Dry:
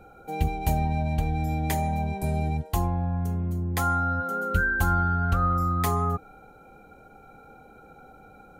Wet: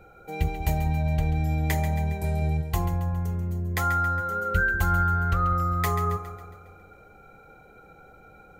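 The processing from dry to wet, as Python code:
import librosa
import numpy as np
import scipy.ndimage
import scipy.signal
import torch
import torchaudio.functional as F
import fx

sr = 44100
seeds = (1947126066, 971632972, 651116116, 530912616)

y = fx.graphic_eq_31(x, sr, hz=(250, 800, 2000, 10000), db=(-11, -5, 7, -6))
y = fx.echo_split(y, sr, split_hz=620.0, low_ms=192, high_ms=137, feedback_pct=52, wet_db=-11)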